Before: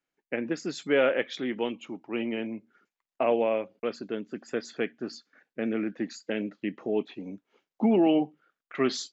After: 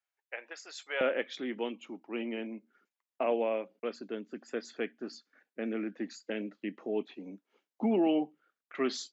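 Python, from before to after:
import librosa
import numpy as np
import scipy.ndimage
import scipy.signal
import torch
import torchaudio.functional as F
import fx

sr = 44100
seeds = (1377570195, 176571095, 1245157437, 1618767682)

y = fx.highpass(x, sr, hz=fx.steps((0.0, 640.0), (1.01, 190.0)), slope=24)
y = F.gain(torch.from_numpy(y), -5.0).numpy()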